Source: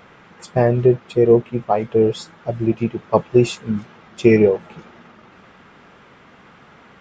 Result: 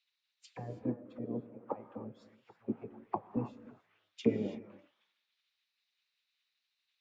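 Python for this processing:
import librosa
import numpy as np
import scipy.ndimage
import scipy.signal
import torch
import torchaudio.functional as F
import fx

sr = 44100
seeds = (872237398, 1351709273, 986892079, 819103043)

y = fx.auto_wah(x, sr, base_hz=300.0, top_hz=3600.0, q=5.4, full_db=-13.5, direction='down')
y = fx.spec_gate(y, sr, threshold_db=-10, keep='weak')
y = fx.rev_gated(y, sr, seeds[0], gate_ms=350, shape='rising', drr_db=9.5)
y = fx.band_widen(y, sr, depth_pct=70)
y = y * 10.0 ** (-3.5 / 20.0)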